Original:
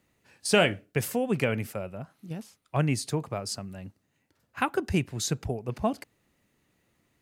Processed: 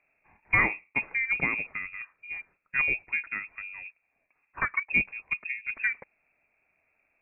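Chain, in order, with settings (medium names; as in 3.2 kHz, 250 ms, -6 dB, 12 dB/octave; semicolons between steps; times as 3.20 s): frequency inversion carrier 2.6 kHz; 4.83–5.65 s: three bands expanded up and down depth 100%; trim -1.5 dB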